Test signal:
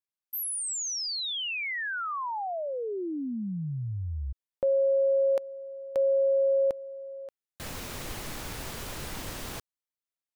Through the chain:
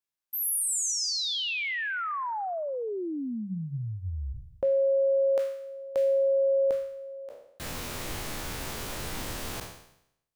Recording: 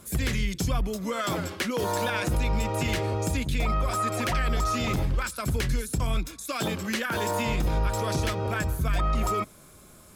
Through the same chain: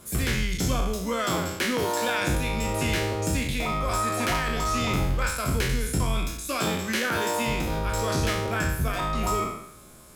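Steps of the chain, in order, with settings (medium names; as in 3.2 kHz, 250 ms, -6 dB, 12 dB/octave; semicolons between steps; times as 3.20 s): spectral sustain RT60 0.76 s; hum notches 50/100/150/200 Hz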